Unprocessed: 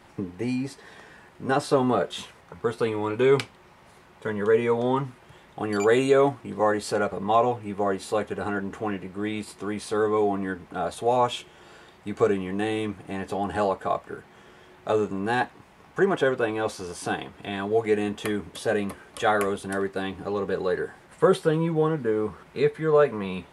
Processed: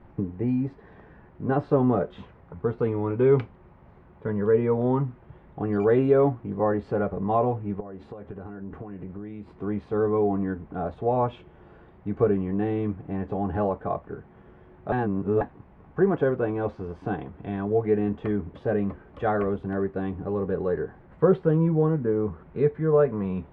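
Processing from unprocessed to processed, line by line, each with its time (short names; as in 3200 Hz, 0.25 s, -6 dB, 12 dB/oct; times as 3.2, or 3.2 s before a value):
7.8–9.49 compressor 20:1, threshold -34 dBFS
14.92–15.41 reverse
whole clip: LPF 2200 Hz 12 dB/oct; tilt -3.5 dB/oct; gain -4.5 dB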